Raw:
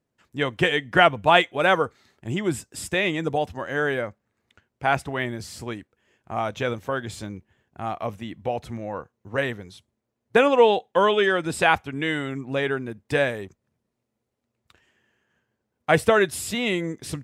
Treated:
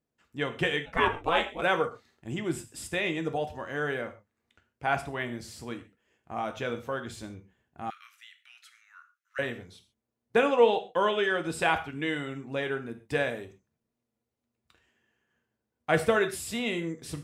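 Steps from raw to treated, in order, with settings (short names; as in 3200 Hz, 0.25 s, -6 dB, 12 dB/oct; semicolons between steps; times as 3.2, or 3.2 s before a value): non-linear reverb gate 0.16 s falling, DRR 6.5 dB; 0.85–1.61 ring modulator 420 Hz -> 89 Hz; 7.9–9.39 Chebyshev high-pass 1300 Hz, order 6; gain -7 dB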